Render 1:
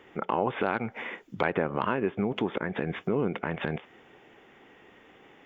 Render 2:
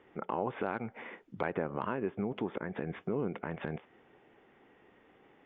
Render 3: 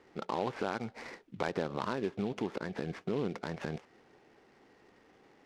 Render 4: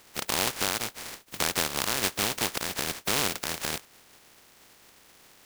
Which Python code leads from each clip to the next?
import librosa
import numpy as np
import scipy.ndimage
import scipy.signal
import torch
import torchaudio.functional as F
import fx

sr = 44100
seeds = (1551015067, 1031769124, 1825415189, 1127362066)

y1 = fx.lowpass(x, sr, hz=1700.0, slope=6)
y1 = y1 * 10.0 ** (-6.0 / 20.0)
y2 = fx.noise_mod_delay(y1, sr, seeds[0], noise_hz=2500.0, depth_ms=0.033)
y3 = fx.spec_flatten(y2, sr, power=0.21)
y3 = y3 * 10.0 ** (6.5 / 20.0)